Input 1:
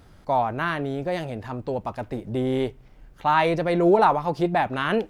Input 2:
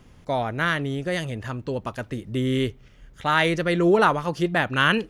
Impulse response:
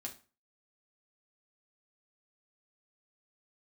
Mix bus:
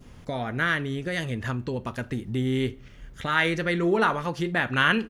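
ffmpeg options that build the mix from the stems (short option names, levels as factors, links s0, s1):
-filter_complex "[0:a]acompressor=threshold=0.0708:ratio=2.5,volume=0.266,asplit=2[s0][s1];[1:a]adynamicequalizer=threshold=0.0282:dfrequency=1800:dqfactor=0.82:tfrequency=1800:tqfactor=0.82:attack=5:release=100:ratio=0.375:range=2:mode=boostabove:tftype=bell,adelay=0.4,volume=1.26,asplit=2[s2][s3];[s3]volume=0.266[s4];[s1]apad=whole_len=224542[s5];[s2][s5]sidechaincompress=threshold=0.00631:ratio=8:attack=33:release=319[s6];[2:a]atrim=start_sample=2205[s7];[s4][s7]afir=irnorm=-1:irlink=0[s8];[s0][s6][s8]amix=inputs=3:normalize=0"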